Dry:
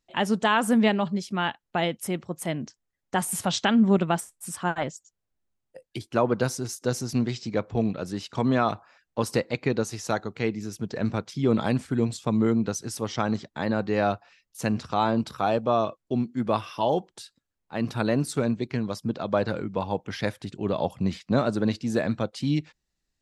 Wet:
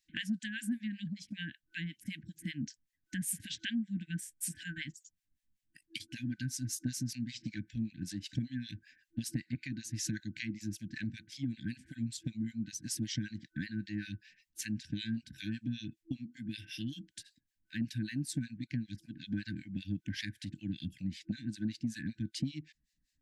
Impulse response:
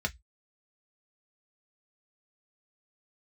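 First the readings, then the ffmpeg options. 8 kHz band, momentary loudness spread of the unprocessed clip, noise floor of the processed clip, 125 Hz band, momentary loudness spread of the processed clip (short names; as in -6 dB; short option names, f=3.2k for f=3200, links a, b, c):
-5.5 dB, 9 LU, -83 dBFS, -9.5 dB, 7 LU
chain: -filter_complex "[0:a]afftfilt=real='re*(1-between(b*sr/4096,330,1500))':imag='im*(1-between(b*sr/4096,330,1500))':win_size=4096:overlap=0.75,acompressor=threshold=-34dB:ratio=12,acrossover=split=1400[a][b];[a]aeval=exprs='val(0)*(1-1/2+1/2*cos(2*PI*5.2*n/s))':c=same[c];[b]aeval=exprs='val(0)*(1-1/2-1/2*cos(2*PI*5.2*n/s))':c=same[d];[c][d]amix=inputs=2:normalize=0,volume=4dB"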